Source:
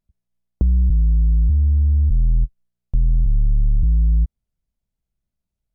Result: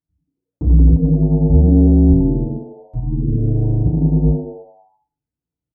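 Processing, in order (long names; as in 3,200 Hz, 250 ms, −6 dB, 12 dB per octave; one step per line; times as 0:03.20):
high-pass filter 57 Hz 12 dB per octave
parametric band 140 Hz +4.5 dB 0.96 octaves
echo with shifted repeats 87 ms, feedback 62%, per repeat +100 Hz, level −8 dB
convolution reverb RT60 0.40 s, pre-delay 3 ms, DRR −8.5 dB
expander for the loud parts 1.5 to 1, over −22 dBFS
level −5.5 dB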